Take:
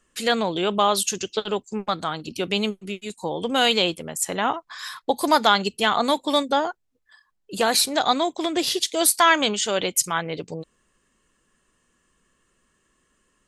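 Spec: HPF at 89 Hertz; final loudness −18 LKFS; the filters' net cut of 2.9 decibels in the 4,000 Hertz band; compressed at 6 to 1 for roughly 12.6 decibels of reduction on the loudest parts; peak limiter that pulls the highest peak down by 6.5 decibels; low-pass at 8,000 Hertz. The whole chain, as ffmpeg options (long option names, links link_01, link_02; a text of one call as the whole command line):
ffmpeg -i in.wav -af "highpass=89,lowpass=8000,equalizer=frequency=4000:width_type=o:gain=-3.5,acompressor=threshold=-26dB:ratio=6,volume=14dB,alimiter=limit=-5dB:level=0:latency=1" out.wav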